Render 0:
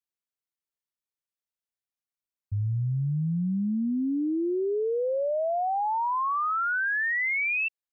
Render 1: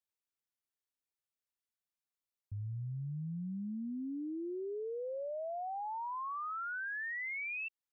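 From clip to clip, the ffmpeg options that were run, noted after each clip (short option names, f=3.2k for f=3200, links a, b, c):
-af "alimiter=level_in=9dB:limit=-24dB:level=0:latency=1:release=178,volume=-9dB,volume=-3.5dB"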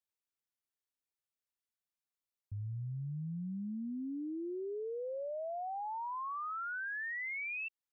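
-af anull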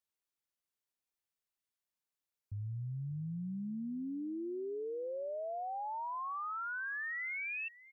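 -af "aecho=1:1:580:0.106"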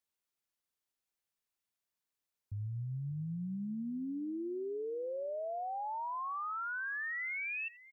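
-af "aecho=1:1:86:0.0668,volume=1dB"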